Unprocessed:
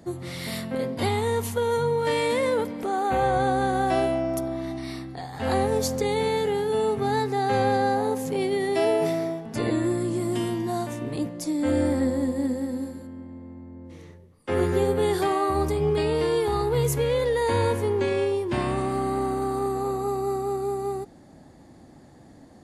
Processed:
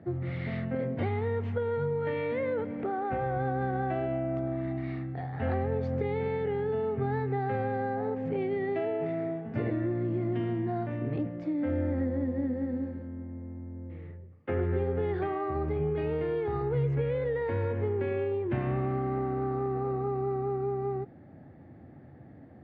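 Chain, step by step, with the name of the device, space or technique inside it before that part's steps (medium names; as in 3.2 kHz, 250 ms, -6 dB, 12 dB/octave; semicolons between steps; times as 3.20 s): bass amplifier (compression, threshold -25 dBFS, peak gain reduction 7 dB; cabinet simulation 74–2300 Hz, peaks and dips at 87 Hz +8 dB, 130 Hz +7 dB, 1 kHz -9 dB); trim -2 dB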